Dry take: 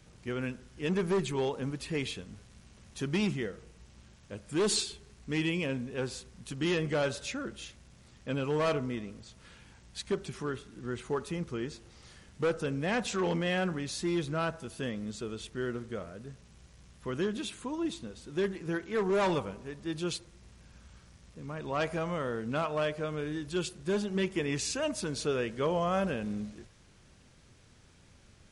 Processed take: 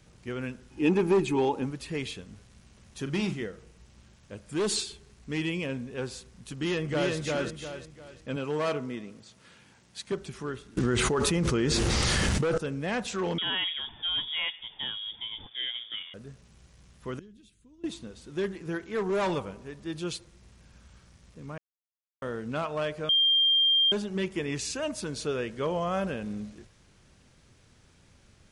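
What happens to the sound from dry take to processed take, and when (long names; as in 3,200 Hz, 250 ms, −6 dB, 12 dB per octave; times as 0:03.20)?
0:00.70–0:01.65: hollow resonant body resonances 310/840/2,500 Hz, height 16 dB → 13 dB, ringing for 40 ms
0:03.02–0:03.44: double-tracking delay 41 ms −9 dB
0:06.53–0:07.15: delay throw 350 ms, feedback 35%, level −1.5 dB
0:08.36–0:10.12: high-pass filter 140 Hz
0:10.77–0:12.58: envelope flattener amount 100%
0:13.38–0:16.14: voice inversion scrambler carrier 3,500 Hz
0:17.19–0:17.84: guitar amp tone stack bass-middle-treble 10-0-1
0:21.58–0:22.22: silence
0:23.09–0:23.92: beep over 3,190 Hz −19.5 dBFS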